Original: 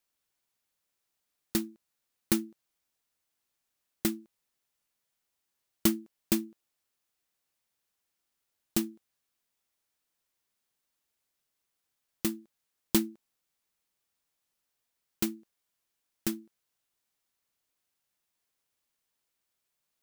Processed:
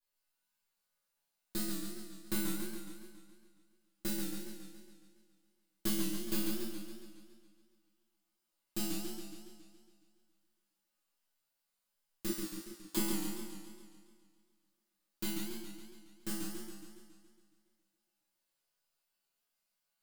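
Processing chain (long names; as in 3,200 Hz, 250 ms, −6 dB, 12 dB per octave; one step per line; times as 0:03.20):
resonators tuned to a chord C#3 minor, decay 0.71 s
in parallel at −3 dB: brickwall limiter −41 dBFS, peak gain reduction 9 dB
0:12.29–0:12.97: on the sum: high-pass filter 550 Hz 12 dB per octave
convolution reverb, pre-delay 3 ms, DRR −3.5 dB
feedback echo with a swinging delay time 139 ms, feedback 61%, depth 158 cents, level −4.5 dB
level +5.5 dB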